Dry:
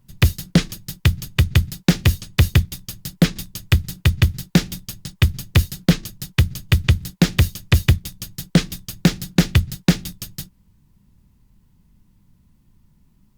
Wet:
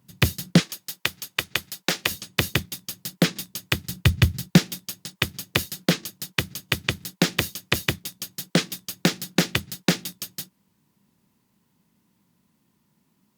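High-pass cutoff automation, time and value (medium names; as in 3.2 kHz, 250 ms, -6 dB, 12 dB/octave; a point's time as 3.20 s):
150 Hz
from 0.60 s 510 Hz
from 2.11 s 240 Hz
from 3.89 s 96 Hz
from 4.58 s 270 Hz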